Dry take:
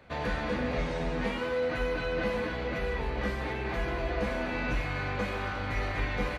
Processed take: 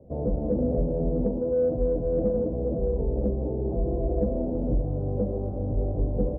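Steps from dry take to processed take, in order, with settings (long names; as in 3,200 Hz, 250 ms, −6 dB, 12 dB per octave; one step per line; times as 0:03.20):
Butterworth low-pass 600 Hz 36 dB per octave
harmonic generator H 5 −40 dB, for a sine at −20.5 dBFS
level +7 dB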